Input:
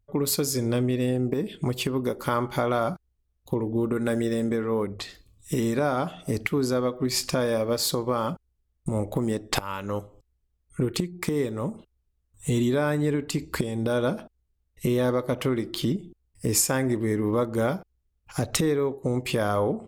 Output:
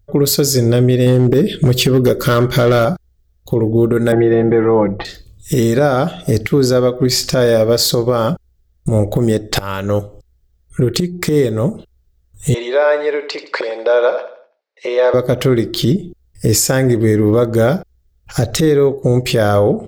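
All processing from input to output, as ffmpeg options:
-filter_complex "[0:a]asettb=1/sr,asplit=3[a][b][c];[a]atrim=end=1.064[d];[b]atrim=start=1.06:end=2.85,asetpts=PTS-STARTPTS,afade=t=in:d=0.004:c=qsin,afade=t=out:st=1.786:d=0.004:c=qsin,equalizer=f=800:w=4.1:g=-13.5,acontrast=23,volume=16.5dB,asoftclip=hard,volume=-16.5dB[e];[c]atrim=start=2.846[f];[d][e]acrossfade=d=0.004:c1=hsin:c2=qsin[g];[g][f]acrossfade=d=0.004:c1=qsin:c2=hsin,asettb=1/sr,asplit=3[h][i][j];[h]atrim=end=4.124[k];[i]atrim=start=4.12:end=5.05,asetpts=PTS-STARTPTS,afade=t=in:d=0.004:c=qsin,afade=t=out:st=0.926:d=0.004:c=qsin,lowpass=f=2.5k:w=0.5412,lowpass=f=2.5k:w=1.3066,equalizer=f=840:w=3.3:g=12.5,aecho=1:1:6:0.84,atrim=end_sample=41013[l];[j]atrim=start=5.046[m];[k][l]acrossfade=d=0.004:c1=hsin:c2=qsin[n];[n][m]acrossfade=d=0.004:c1=qsin:c2=hsin,asettb=1/sr,asplit=3[o][p][q];[o]atrim=end=12.544[r];[p]atrim=start=12.54:end=15.14,asetpts=PTS-STARTPTS,afade=t=in:d=0.004:c=qsin,afade=t=out:st=2.596:d=0.004:c=qsin,highpass=f=490:w=0.5412,highpass=f=490:w=1.3066,equalizer=f=540:t=q:w=4:g=5,equalizer=f=960:t=q:w=4:g=9,equalizer=f=2.3k:t=q:w=4:g=5,equalizer=f=3.3k:t=q:w=4:g=-6,lowpass=f=4.5k:w=0.5412,lowpass=f=4.5k:w=1.3066,aecho=1:1:83|166|249|332:0.237|0.0949|0.0379|0.0152,atrim=end_sample=114660[s];[q]atrim=start=15.136[t];[r][s]acrossfade=d=0.004:c1=hsin:c2=qsin[u];[u][t]acrossfade=d=0.004:c1=qsin:c2=hsin,equalizer=f=250:t=o:w=0.67:g=-6,equalizer=f=1k:t=o:w=0.67:g=-11,equalizer=f=2.5k:t=o:w=0.67:g=-7,equalizer=f=10k:t=o:w=0.67:g=-8,alimiter=level_in=19.5dB:limit=-1dB:release=50:level=0:latency=1,volume=-3.5dB"

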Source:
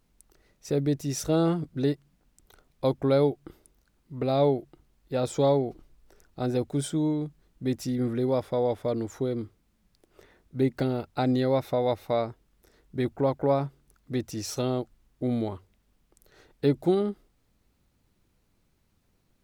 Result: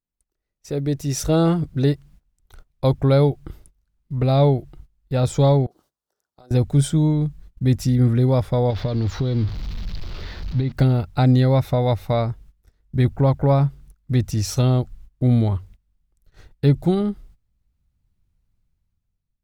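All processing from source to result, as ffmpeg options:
-filter_complex "[0:a]asettb=1/sr,asplit=3[a][b][c];[a]atrim=end=5.664[d];[b]atrim=start=5.66:end=6.51,asetpts=PTS-STARTPTS,afade=t=in:d=0.004:c=qsin,afade=t=out:st=0.846:d=0.004:c=qsin,highpass=500,equalizer=f=2.3k:t=o:w=0.75:g=-13.5,acompressor=threshold=-50dB:ratio=8:attack=3.2:release=140:knee=1:detection=peak[e];[c]atrim=start=6.506[f];[d][e]acrossfade=d=0.004:c1=hsin:c2=qsin[g];[g][f]acrossfade=d=0.004:c1=qsin:c2=hsin,asettb=1/sr,asplit=3[h][i][j];[h]atrim=end=8.704[k];[i]atrim=start=8.7:end=10.72,asetpts=PTS-STARTPTS,afade=t=in:d=0.004:c=qsin,afade=t=out:st=2.016:d=0.004:c=qsin,aeval=exprs='val(0)+0.5*0.00794*sgn(val(0))':c=same,highshelf=f=6.4k:t=q:w=3:g=-14,acompressor=threshold=-28dB:ratio=6:attack=3.2:release=140:knee=1:detection=peak[l];[j]atrim=start=10.716[m];[k][l]acrossfade=d=0.004:c1=hsin:c2=qsin[n];[n][m]acrossfade=d=0.004:c1=qsin:c2=hsin,agate=range=-19dB:threshold=-57dB:ratio=16:detection=peak,asubboost=boost=6.5:cutoff=130,dynaudnorm=f=190:g=9:m=13dB,volume=-4.5dB"

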